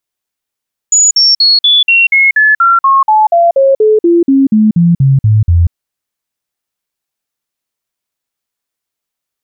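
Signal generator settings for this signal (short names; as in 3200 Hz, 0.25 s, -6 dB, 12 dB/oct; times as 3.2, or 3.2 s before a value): stepped sine 6890 Hz down, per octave 3, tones 20, 0.19 s, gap 0.05 s -4 dBFS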